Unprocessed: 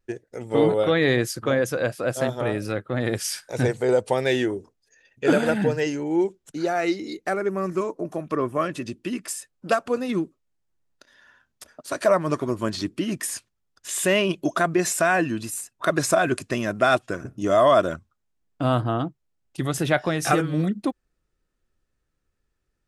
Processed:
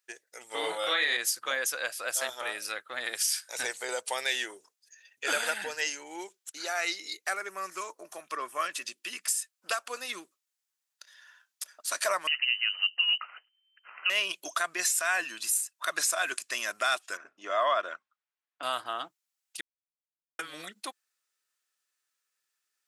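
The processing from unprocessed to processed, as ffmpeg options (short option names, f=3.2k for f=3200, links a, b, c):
-filter_complex "[0:a]asettb=1/sr,asplit=3[a][b][c];[a]atrim=end=0.604[d];[b]atrim=start=0.6:end=1.17,asetpts=PTS-STARTPTS,afade=t=in:d=0.004:c=qsin,afade=t=out:st=0.566:d=0.004:c=qsin,asplit=2[e][f];[f]adelay=34,volume=-2dB[g];[e][g]amix=inputs=2:normalize=0,atrim=end_sample=25137[h];[c]atrim=start=1.166[i];[d][h]acrossfade=d=0.004:c1=hsin:c2=qsin[j];[j][i]acrossfade=d=0.004:c1=qsin:c2=hsin,asettb=1/sr,asplit=3[k][l][m];[k]atrim=end=12.274[n];[l]atrim=start=12.27:end=14.1,asetpts=PTS-STARTPTS,afade=t=in:d=0.004:c=qsin,afade=t=out:st=1.826:d=0.004:c=qsin,lowpass=f=2.6k:t=q:w=0.5098,lowpass=f=2.6k:t=q:w=0.6013,lowpass=f=2.6k:t=q:w=0.9,lowpass=f=2.6k:t=q:w=2.563,afreqshift=-3100[o];[m]atrim=start=14.096[p];[n][o]acrossfade=d=0.004:c1=hsin:c2=qsin[q];[q][p]acrossfade=d=0.004:c1=qsin:c2=hsin,asettb=1/sr,asplit=3[r][s][t];[r]atrim=end=17.174[u];[s]atrim=start=17.17:end=18.63,asetpts=PTS-STARTPTS,afade=t=in:d=0.004:c=qsin,afade=t=out:st=1.456:d=0.004:c=qsin,highpass=220,lowpass=2.4k[v];[t]atrim=start=18.626[w];[u][v]acrossfade=d=0.004:c1=hsin:c2=qsin[x];[x][w]acrossfade=d=0.004:c1=qsin:c2=hsin,asplit=3[y][z][aa];[y]atrim=end=19.61,asetpts=PTS-STARTPTS,afade=t=out:st=19.606:d=0.004:c=hsin[ab];[z]atrim=start=19.61:end=20.39,asetpts=PTS-STARTPTS,volume=0[ac];[aa]atrim=start=20.39,asetpts=PTS-STARTPTS,afade=t=in:d=0.004:c=hsin[ad];[ab][ac][ad]concat=n=3:v=0:a=1,highpass=1.1k,highshelf=f=3.3k:g=11,alimiter=limit=-14dB:level=0:latency=1:release=201,volume=-2.5dB"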